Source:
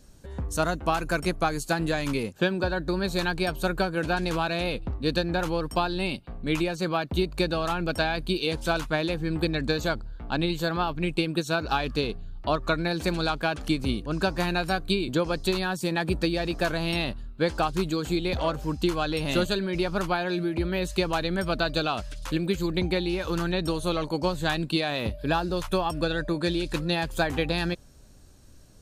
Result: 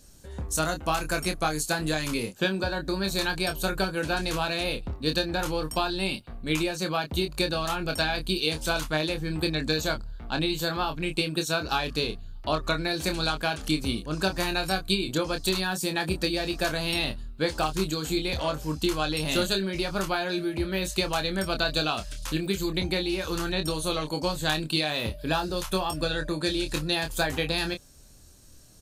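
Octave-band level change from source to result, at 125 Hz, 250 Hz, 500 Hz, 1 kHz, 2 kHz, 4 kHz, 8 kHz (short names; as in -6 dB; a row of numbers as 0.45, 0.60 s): -2.5, -2.0, -2.0, -1.5, 0.0, +3.5, +6.5 dB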